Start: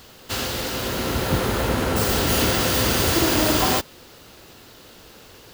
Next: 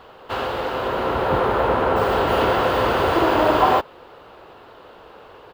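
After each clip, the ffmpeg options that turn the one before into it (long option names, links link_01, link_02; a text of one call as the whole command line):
ffmpeg -i in.wav -af "firequalizer=gain_entry='entry(240,0);entry(420,10);entry(980,14);entry(2000,2);entry(2900,2);entry(5800,-16)':delay=0.05:min_phase=1,volume=-4.5dB" out.wav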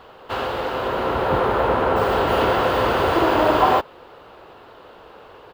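ffmpeg -i in.wav -af anull out.wav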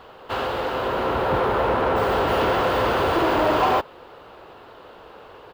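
ffmpeg -i in.wav -af "asoftclip=type=tanh:threshold=-13.5dB" out.wav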